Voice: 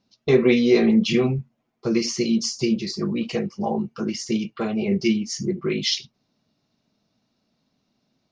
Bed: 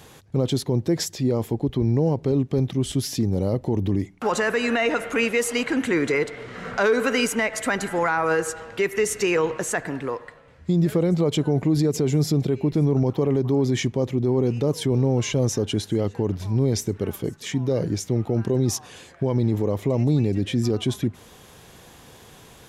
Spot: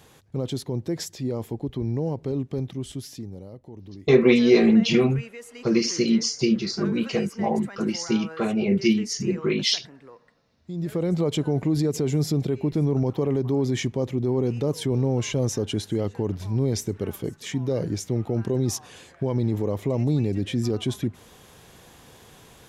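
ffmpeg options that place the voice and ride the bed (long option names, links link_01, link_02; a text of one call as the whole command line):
ffmpeg -i stem1.wav -i stem2.wav -filter_complex "[0:a]adelay=3800,volume=0.5dB[link_01];[1:a]volume=10.5dB,afade=type=out:start_time=2.5:duration=0.98:silence=0.223872,afade=type=in:start_time=10.63:duration=0.51:silence=0.149624[link_02];[link_01][link_02]amix=inputs=2:normalize=0" out.wav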